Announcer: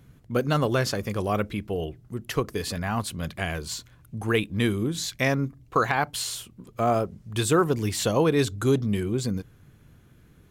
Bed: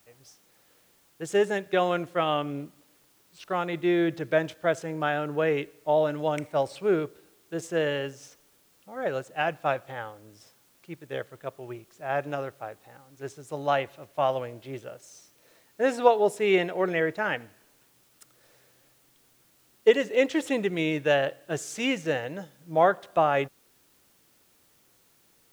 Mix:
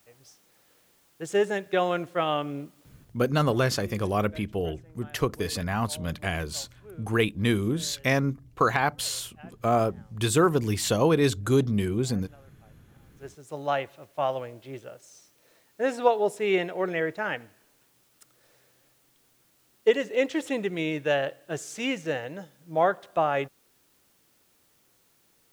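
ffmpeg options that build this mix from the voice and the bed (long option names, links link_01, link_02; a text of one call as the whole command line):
ffmpeg -i stem1.wav -i stem2.wav -filter_complex "[0:a]adelay=2850,volume=0dB[link_01];[1:a]volume=21dB,afade=type=out:start_time=2.89:duration=0.4:silence=0.0707946,afade=type=in:start_time=12.86:duration=0.63:silence=0.0841395[link_02];[link_01][link_02]amix=inputs=2:normalize=0" out.wav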